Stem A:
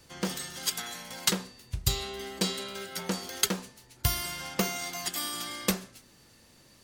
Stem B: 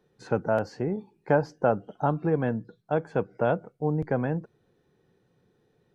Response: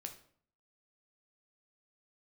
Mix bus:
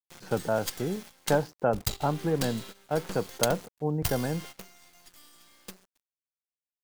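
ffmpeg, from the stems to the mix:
-filter_complex "[0:a]acrusher=bits=4:dc=4:mix=0:aa=0.000001,volume=0.668[s0];[1:a]aeval=exprs='val(0)*gte(abs(val(0)),0.00355)':c=same,volume=0.75,asplit=2[s1][s2];[s2]apad=whole_len=301348[s3];[s0][s3]sidechaingate=range=0.2:threshold=0.00447:ratio=16:detection=peak[s4];[s4][s1]amix=inputs=2:normalize=0"

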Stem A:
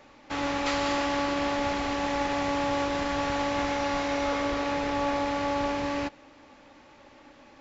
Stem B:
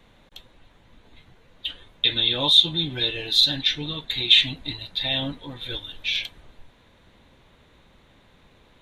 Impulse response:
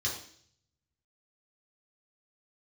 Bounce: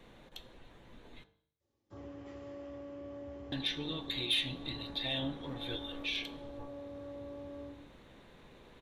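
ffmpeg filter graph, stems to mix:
-filter_complex "[0:a]afwtdn=0.0251,equalizer=f=1700:t=o:w=2.5:g=-13.5,acompressor=threshold=0.0178:ratio=6,adelay=1600,volume=0.668,asplit=2[s0][s1];[s1]volume=0.282[s2];[1:a]asoftclip=type=tanh:threshold=0.335,volume=0.75,asplit=3[s3][s4][s5];[s3]atrim=end=1.24,asetpts=PTS-STARTPTS,afade=t=out:st=1.236:d=0.004:c=hsin[s6];[s4]atrim=start=1.24:end=3.52,asetpts=PTS-STARTPTS,volume=0[s7];[s5]atrim=start=3.52,asetpts=PTS-STARTPTS,afade=t=in:d=0.004:c=hsin[s8];[s6][s7][s8]concat=n=3:v=0:a=1,asplit=3[s9][s10][s11];[s10]volume=0.126[s12];[s11]apad=whole_len=405929[s13];[s0][s13]sidechaingate=range=0.0224:threshold=0.00562:ratio=16:detection=peak[s14];[2:a]atrim=start_sample=2205[s15];[s2][s12]amix=inputs=2:normalize=0[s16];[s16][s15]afir=irnorm=-1:irlink=0[s17];[s14][s9][s17]amix=inputs=3:normalize=0,equalizer=f=410:w=0.88:g=5,bandreject=f=50.04:t=h:w=4,bandreject=f=100.08:t=h:w=4,bandreject=f=150.12:t=h:w=4,bandreject=f=200.16:t=h:w=4,bandreject=f=250.2:t=h:w=4,bandreject=f=300.24:t=h:w=4,bandreject=f=350.28:t=h:w=4,bandreject=f=400.32:t=h:w=4,bandreject=f=450.36:t=h:w=4,bandreject=f=500.4:t=h:w=4,bandreject=f=550.44:t=h:w=4,bandreject=f=600.48:t=h:w=4,bandreject=f=650.52:t=h:w=4,bandreject=f=700.56:t=h:w=4,bandreject=f=750.6:t=h:w=4,bandreject=f=800.64:t=h:w=4,bandreject=f=850.68:t=h:w=4,bandreject=f=900.72:t=h:w=4,bandreject=f=950.76:t=h:w=4,bandreject=f=1000.8:t=h:w=4,bandreject=f=1050.84:t=h:w=4,bandreject=f=1100.88:t=h:w=4,bandreject=f=1150.92:t=h:w=4,bandreject=f=1200.96:t=h:w=4,bandreject=f=1251:t=h:w=4,bandreject=f=1301.04:t=h:w=4,bandreject=f=1351.08:t=h:w=4,bandreject=f=1401.12:t=h:w=4,bandreject=f=1451.16:t=h:w=4,bandreject=f=1501.2:t=h:w=4,bandreject=f=1551.24:t=h:w=4,bandreject=f=1601.28:t=h:w=4,bandreject=f=1651.32:t=h:w=4,bandreject=f=1701.36:t=h:w=4,acompressor=threshold=0.00447:ratio=1.5"

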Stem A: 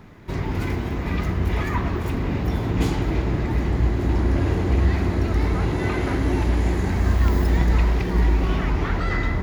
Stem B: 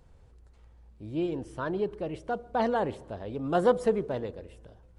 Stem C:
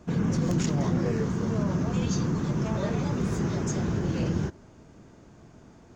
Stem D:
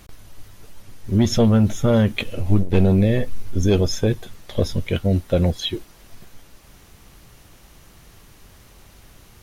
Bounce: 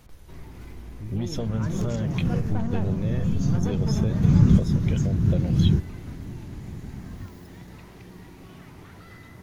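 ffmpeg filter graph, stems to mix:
-filter_complex "[0:a]highpass=f=96:w=0.5412,highpass=f=96:w=1.3066,acrossover=split=220|3000[s0][s1][s2];[s1]acompressor=threshold=0.0282:ratio=6[s3];[s0][s3][s2]amix=inputs=3:normalize=0,volume=0.141[s4];[1:a]lowpass=3200,asubboost=boost=12:cutoff=180,volume=1.26[s5];[2:a]asubboost=boost=11:cutoff=180,adelay=1300,volume=1[s6];[3:a]acrossover=split=120[s7][s8];[s8]acompressor=threshold=0.0891:ratio=3[s9];[s7][s9]amix=inputs=2:normalize=0,volume=0.355,asplit=2[s10][s11];[s11]apad=whole_len=320090[s12];[s6][s12]sidechaincompress=threshold=0.0158:ratio=5:attack=16:release=279[s13];[s4][s5]amix=inputs=2:normalize=0,asoftclip=type=tanh:threshold=0.0794,acompressor=threshold=0.0178:ratio=2.5,volume=1[s14];[s13][s10][s14]amix=inputs=3:normalize=0"

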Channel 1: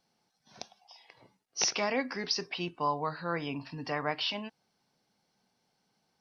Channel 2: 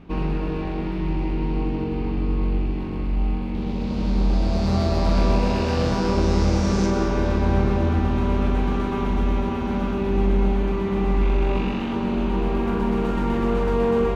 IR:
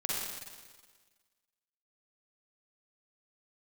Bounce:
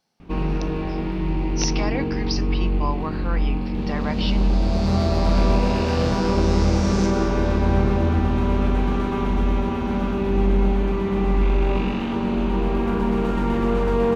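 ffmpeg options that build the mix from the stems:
-filter_complex "[0:a]volume=1.26[s0];[1:a]adelay=200,volume=1.12[s1];[s0][s1]amix=inputs=2:normalize=0"

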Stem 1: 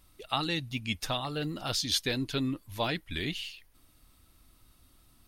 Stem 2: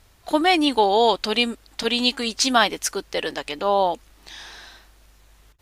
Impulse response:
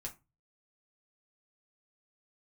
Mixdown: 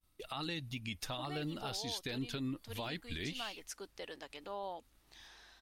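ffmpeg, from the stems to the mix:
-filter_complex "[0:a]agate=range=0.0224:threshold=0.00282:ratio=3:detection=peak,alimiter=level_in=1.06:limit=0.0631:level=0:latency=1:release=105,volume=0.944,volume=1.12,asplit=2[s0][s1];[1:a]adelay=850,volume=0.133[s2];[s1]apad=whole_len=285056[s3];[s2][s3]sidechaincompress=threshold=0.0178:ratio=8:attack=5.6:release=638[s4];[s0][s4]amix=inputs=2:normalize=0,acompressor=threshold=0.00398:ratio=1.5"

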